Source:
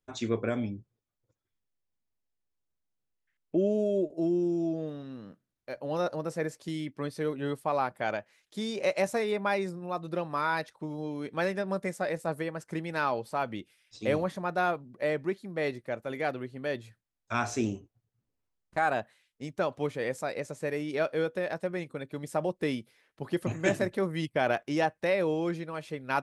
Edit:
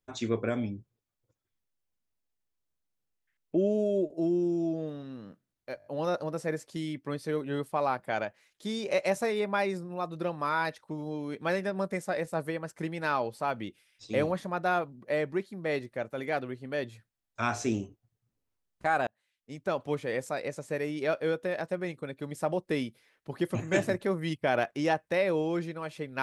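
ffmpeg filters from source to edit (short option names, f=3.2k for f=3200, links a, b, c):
-filter_complex "[0:a]asplit=6[a][b][c][d][e][f];[a]atrim=end=5.802[g];[b]atrim=start=5.778:end=5.802[h];[c]atrim=start=5.778:end=5.802[i];[d]atrim=start=5.778:end=5.802[j];[e]atrim=start=5.778:end=18.99,asetpts=PTS-STARTPTS,afade=t=out:st=13.208:d=0.004:c=hsin[k];[f]atrim=start=18.99,asetpts=PTS-STARTPTS,afade=t=in:d=0.71[l];[g][h]acrossfade=d=0.004:c1=hsin:c2=hsin[m];[m][i]acrossfade=d=0.004:c1=hsin:c2=hsin[n];[n][j]acrossfade=d=0.004:c1=hsin:c2=hsin[o];[k][l]concat=n=2:v=0:a=1[p];[o][p]acrossfade=d=0.004:c1=hsin:c2=hsin"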